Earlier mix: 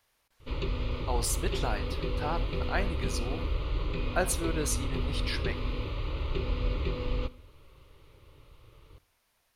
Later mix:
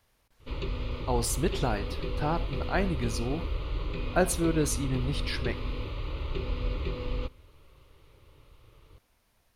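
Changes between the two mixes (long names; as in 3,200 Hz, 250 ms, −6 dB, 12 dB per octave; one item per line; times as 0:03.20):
speech: add low-shelf EQ 440 Hz +11 dB
background: send −11.0 dB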